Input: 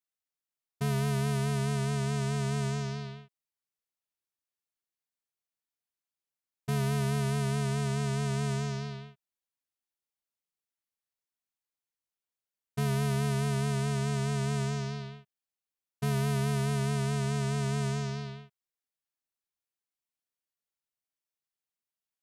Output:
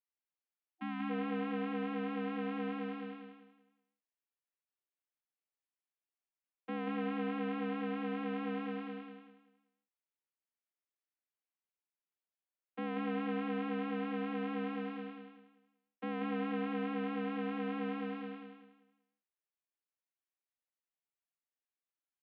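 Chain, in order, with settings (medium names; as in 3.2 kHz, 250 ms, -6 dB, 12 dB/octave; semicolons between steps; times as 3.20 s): mistuned SSB +67 Hz 170–2900 Hz; feedback delay 184 ms, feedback 31%, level -5 dB; spectral selection erased 0.70–1.10 s, 330–740 Hz; trim -5.5 dB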